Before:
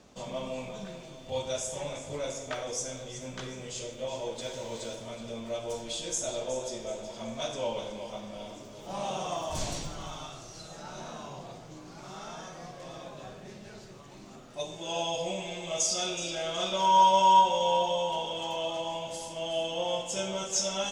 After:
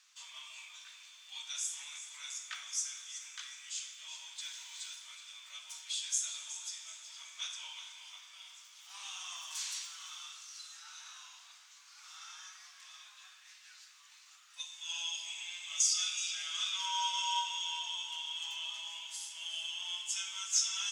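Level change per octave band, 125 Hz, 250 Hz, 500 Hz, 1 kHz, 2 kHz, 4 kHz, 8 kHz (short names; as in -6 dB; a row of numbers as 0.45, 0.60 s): under -40 dB, under -40 dB, under -40 dB, -17.0 dB, -2.5 dB, -1.0 dB, 0.0 dB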